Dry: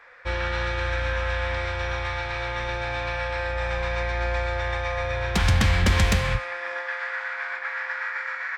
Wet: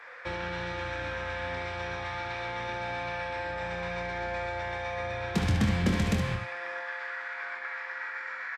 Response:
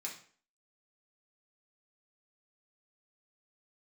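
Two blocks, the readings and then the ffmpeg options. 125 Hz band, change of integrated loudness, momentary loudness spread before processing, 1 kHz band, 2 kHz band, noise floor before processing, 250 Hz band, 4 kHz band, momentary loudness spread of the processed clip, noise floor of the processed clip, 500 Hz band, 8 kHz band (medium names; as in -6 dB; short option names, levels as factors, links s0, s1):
-7.0 dB, -6.5 dB, 9 LU, -5.0 dB, -7.0 dB, -34 dBFS, +1.0 dB, -8.5 dB, 9 LU, -39 dBFS, -5.5 dB, -9.5 dB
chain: -filter_complex "[0:a]highpass=160,equalizer=f=230:w=3.8:g=-2.5,acrossover=split=410[s0][s1];[s1]acompressor=threshold=0.00794:ratio=3[s2];[s0][s2]amix=inputs=2:normalize=0,asplit=2[s3][s4];[s4]aecho=0:1:24|63|73:0.398|0.237|0.355[s5];[s3][s5]amix=inputs=2:normalize=0,aresample=32000,aresample=44100,volume=1.33"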